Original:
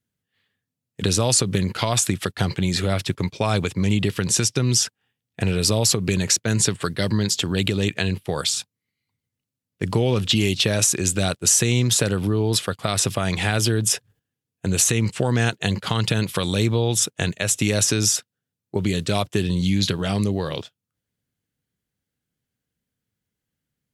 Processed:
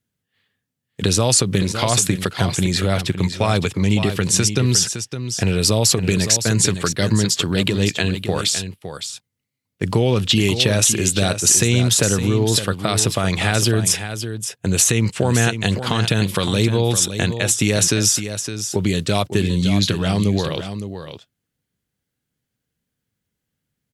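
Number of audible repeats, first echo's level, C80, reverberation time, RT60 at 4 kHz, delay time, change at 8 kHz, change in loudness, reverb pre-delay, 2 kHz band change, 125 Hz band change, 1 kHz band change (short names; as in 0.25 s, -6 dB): 1, -9.5 dB, none, none, none, 0.562 s, +3.5 dB, +3.5 dB, none, +3.5 dB, +3.5 dB, +3.5 dB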